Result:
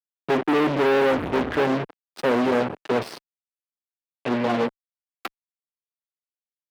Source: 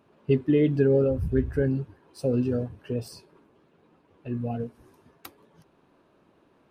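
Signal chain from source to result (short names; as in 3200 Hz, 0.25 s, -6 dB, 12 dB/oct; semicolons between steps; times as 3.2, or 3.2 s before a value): fuzz box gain 43 dB, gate -42 dBFS; three-band isolator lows -22 dB, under 210 Hz, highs -16 dB, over 3800 Hz; gain -3.5 dB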